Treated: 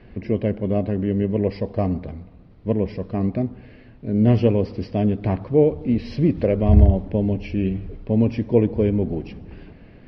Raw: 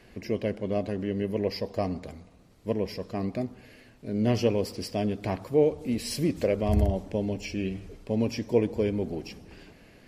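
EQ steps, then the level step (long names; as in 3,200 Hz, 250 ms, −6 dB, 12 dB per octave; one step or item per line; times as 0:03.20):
Savitzky-Golay smoothing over 15 samples
high-frequency loss of the air 240 metres
low-shelf EQ 280 Hz +9 dB
+3.5 dB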